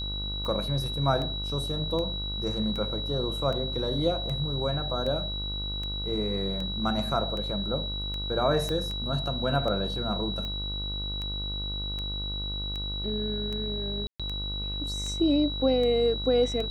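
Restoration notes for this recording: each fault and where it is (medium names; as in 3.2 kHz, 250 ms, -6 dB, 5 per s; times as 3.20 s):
buzz 50 Hz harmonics 30 -35 dBFS
tick 78 rpm -23 dBFS
whine 3.9 kHz -33 dBFS
8.69 s: pop -19 dBFS
14.07–14.20 s: dropout 126 ms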